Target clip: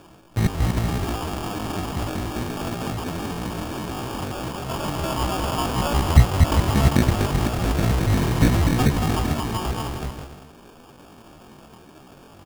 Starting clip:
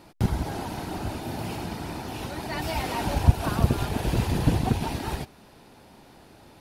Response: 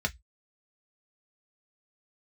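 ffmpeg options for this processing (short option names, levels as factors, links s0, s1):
-af "aecho=1:1:120|204|262.8|304|332.8:0.631|0.398|0.251|0.158|0.1,atempo=0.53,acrusher=samples=22:mix=1:aa=0.000001,volume=1.41"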